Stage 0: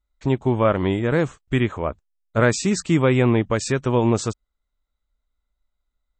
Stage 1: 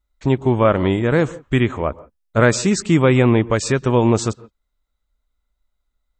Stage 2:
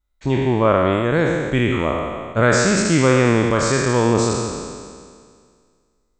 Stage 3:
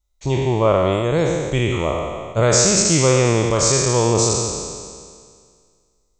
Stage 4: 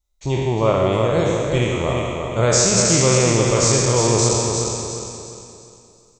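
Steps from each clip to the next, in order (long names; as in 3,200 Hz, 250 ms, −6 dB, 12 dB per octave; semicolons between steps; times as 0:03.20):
on a send at −20 dB: low-pass filter 2,300 Hz 12 dB per octave + convolution reverb, pre-delay 111 ms; on the sum: level +3.5 dB
peak hold with a decay on every bin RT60 2.00 s; level −3.5 dB
graphic EQ with 15 bands 250 Hz −9 dB, 1,600 Hz −12 dB, 6,300 Hz +9 dB; level +2 dB
hum removal 51.22 Hz, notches 40; on a send: repeating echo 352 ms, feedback 39%, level −5 dB; on the sum: level −1 dB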